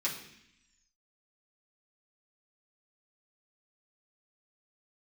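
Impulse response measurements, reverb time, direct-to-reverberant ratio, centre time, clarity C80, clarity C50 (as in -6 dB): 0.75 s, -7.0 dB, 27 ms, 10.0 dB, 7.5 dB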